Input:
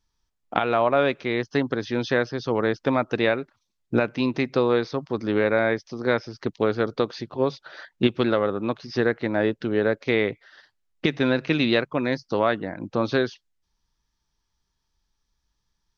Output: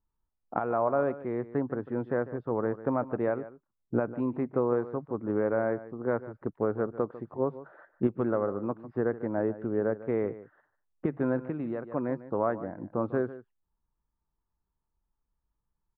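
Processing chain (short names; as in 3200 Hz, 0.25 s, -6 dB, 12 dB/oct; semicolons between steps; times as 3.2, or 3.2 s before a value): LPF 1300 Hz 24 dB/oct; echo 0.148 s -15.5 dB; 11.42–11.92 compressor, threshold -24 dBFS, peak gain reduction 7.5 dB; gain -6 dB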